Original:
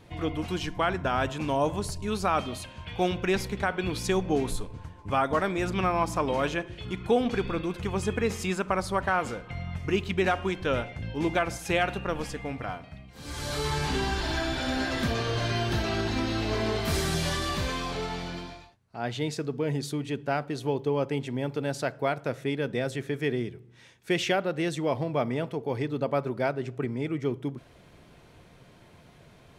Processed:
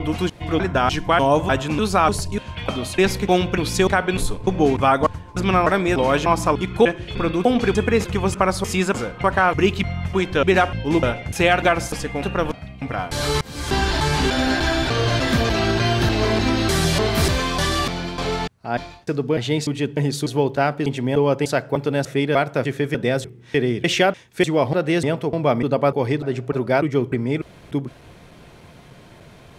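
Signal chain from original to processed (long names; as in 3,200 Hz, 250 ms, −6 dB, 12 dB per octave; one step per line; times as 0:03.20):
slices reordered back to front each 298 ms, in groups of 2
level +9 dB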